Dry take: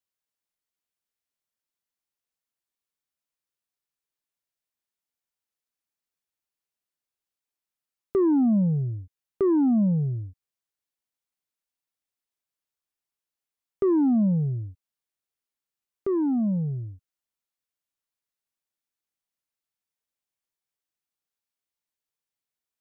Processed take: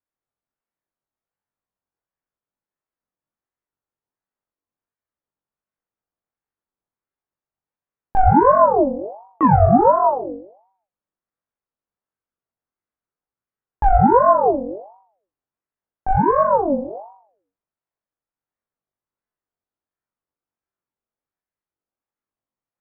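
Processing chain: flutter echo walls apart 3.6 m, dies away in 0.6 s; level-controlled noise filter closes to 930 Hz, open at -19 dBFS; ring modulator with a swept carrier 620 Hz, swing 40%, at 1.4 Hz; trim +6.5 dB

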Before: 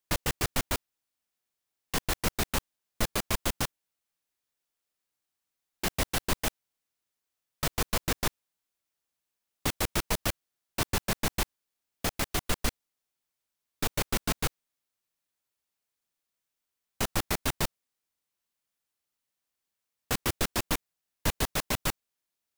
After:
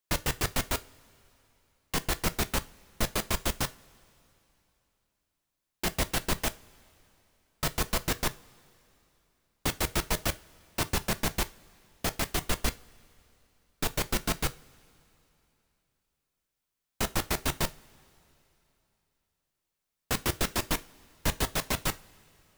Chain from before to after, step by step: two-slope reverb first 0.26 s, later 3.2 s, from -22 dB, DRR 11.5 dB

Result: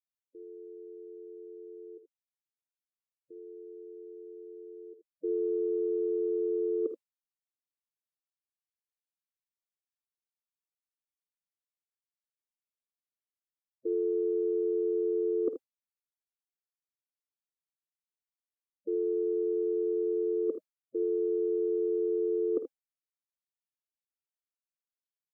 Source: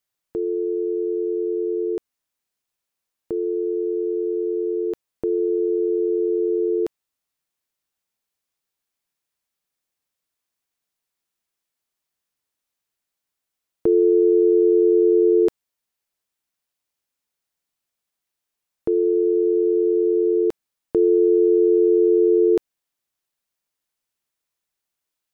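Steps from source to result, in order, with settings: gate with hold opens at -15 dBFS; spectral gate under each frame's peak -10 dB strong; dynamic bell 630 Hz, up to +7 dB, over -40 dBFS, Q 4.3; reverse; compression, threshold -26 dBFS, peak gain reduction 12.5 dB; reverse; early reflections 52 ms -12.5 dB, 79 ms -11 dB; trim -2.5 dB

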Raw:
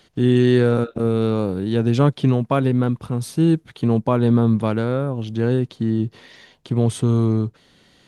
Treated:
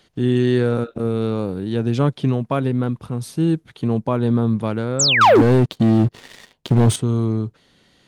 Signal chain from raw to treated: 4.99–5.42 s: painted sound fall 250–8200 Hz -14 dBFS; 5.21–6.96 s: waveshaping leveller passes 3; trim -2 dB

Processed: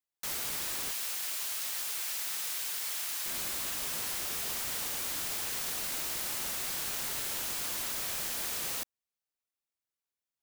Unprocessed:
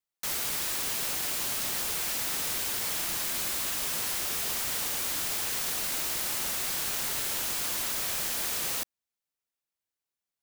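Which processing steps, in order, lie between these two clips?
0.91–3.26 s: high-pass 1.3 kHz 6 dB/octave; trim -4 dB

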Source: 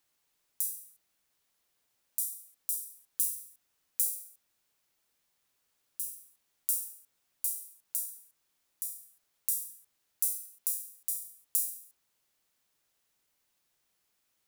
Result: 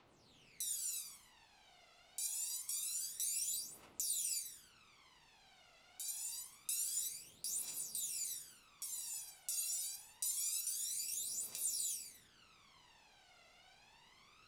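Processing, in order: low-pass 3.4 kHz 12 dB/octave; bass shelf 64 Hz -7.5 dB; gated-style reverb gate 380 ms flat, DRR -7 dB; compression 1.5:1, threshold -56 dBFS, peak gain reduction 4.5 dB; phaser 0.26 Hz, delay 1.5 ms, feedback 73%; 6.72–8.94 s: modulation noise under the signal 25 dB; peaking EQ 1.7 kHz -7.5 dB 0.32 oct; trim +9 dB

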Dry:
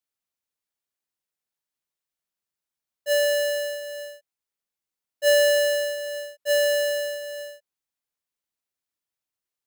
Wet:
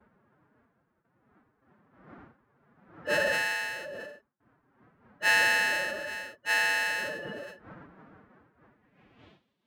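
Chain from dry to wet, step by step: wind noise 140 Hz -34 dBFS; gate with hold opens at -43 dBFS; band-pass sweep 1.5 kHz -> 3.5 kHz, 8.63–9.35 s; formant-preserving pitch shift +7 st; trim +5 dB

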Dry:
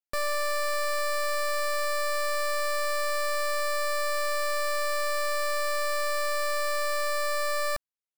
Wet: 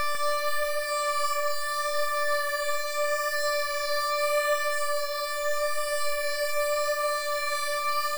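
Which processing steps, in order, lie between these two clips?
Paulstretch 12×, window 0.50 s, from 3.54 s; tape echo 148 ms, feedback 54%, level -4 dB, low-pass 4.8 kHz

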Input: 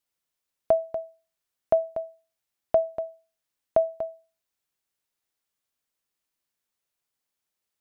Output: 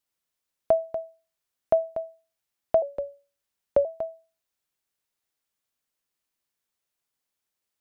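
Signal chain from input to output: 2.82–3.85 s: frequency shift -88 Hz

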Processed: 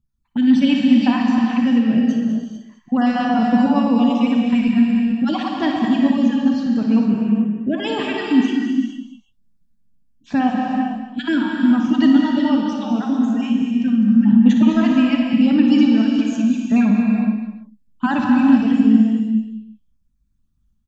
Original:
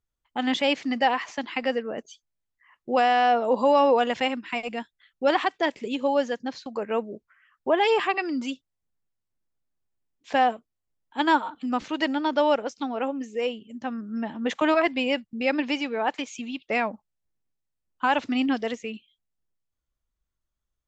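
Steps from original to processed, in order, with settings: random holes in the spectrogram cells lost 31%; resonant low shelf 320 Hz +14 dB, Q 3; band-stop 2.1 kHz, Q 7.8; in parallel at -1 dB: peak limiter -15 dBFS, peak gain reduction 11.5 dB; on the sum: tremolo saw up 0.82 Hz, depth 35%; on a send: multi-tap echo 59/205/338 ms -9/-10.5/-19.5 dB; on the sum: gated-style reverb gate 480 ms flat, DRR 0.5 dB; trim -3 dB

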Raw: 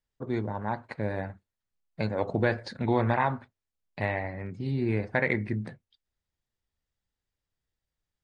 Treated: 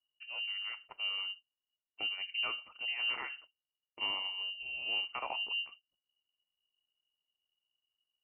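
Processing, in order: FFT filter 100 Hz 0 dB, 180 Hz -22 dB, 1 kHz -19 dB, 2.3 kHz -7 dB; one-sided clip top -32.5 dBFS; frequency inversion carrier 2.9 kHz

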